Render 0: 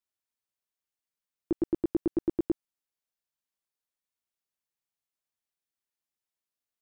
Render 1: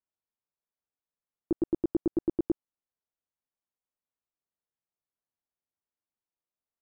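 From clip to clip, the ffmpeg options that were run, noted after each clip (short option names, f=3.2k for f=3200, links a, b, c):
-af "lowpass=1.2k"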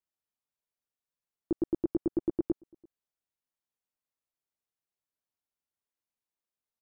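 -filter_complex "[0:a]asplit=2[a][b];[b]adelay=338.2,volume=-28dB,highshelf=f=4k:g=-7.61[c];[a][c]amix=inputs=2:normalize=0,volume=-1.5dB"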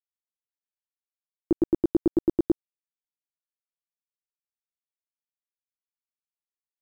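-af "aeval=exprs='val(0)*gte(abs(val(0)),0.00501)':c=same,volume=7dB"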